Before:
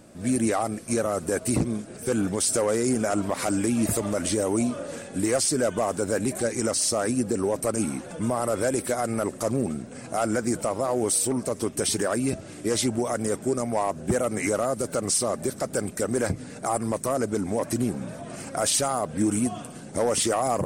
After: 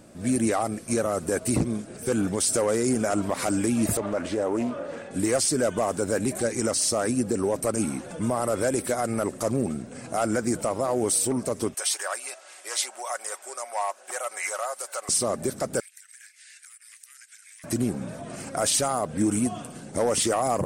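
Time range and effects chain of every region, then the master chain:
0:03.97–0:05.11: mid-hump overdrive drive 9 dB, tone 1,400 Hz, clips at −14 dBFS + high-shelf EQ 5,200 Hz −5 dB + highs frequency-modulated by the lows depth 0.17 ms
0:11.74–0:15.09: high-pass filter 720 Hz 24 dB per octave + comb filter 5.4 ms, depth 32%
0:15.80–0:17.64: Butterworth high-pass 1,600 Hz 48 dB per octave + downward compressor 16 to 1, threshold −44 dBFS + frequency shifter +57 Hz
whole clip: no processing

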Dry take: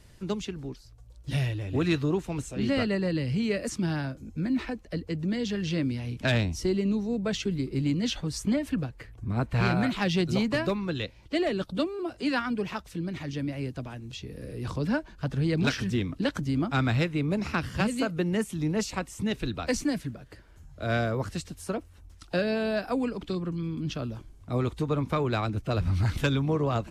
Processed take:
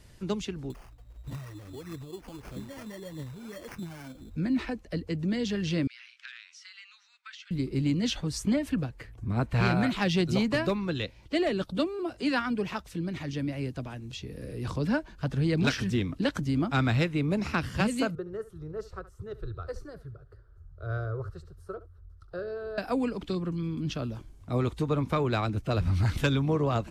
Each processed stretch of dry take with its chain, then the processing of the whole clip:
0:00.70–0:04.36: downward compressor, threshold −41 dBFS + phase shifter 1.6 Hz, delay 4.3 ms, feedback 54% + sample-rate reduction 3,800 Hz
0:05.87–0:07.51: Butterworth high-pass 1,300 Hz 48 dB per octave + downward compressor, threshold −40 dBFS + high-frequency loss of the air 120 metres
0:18.15–0:22.78: drawn EQ curve 110 Hz 0 dB, 260 Hz −29 dB, 390 Hz −2 dB, 580 Hz −10 dB, 910 Hz −18 dB, 1,300 Hz −2 dB, 2,300 Hz −29 dB, 4,300 Hz −19 dB, 7,000 Hz −26 dB, 13,000 Hz −20 dB + single-tap delay 71 ms −16.5 dB
whole clip: no processing

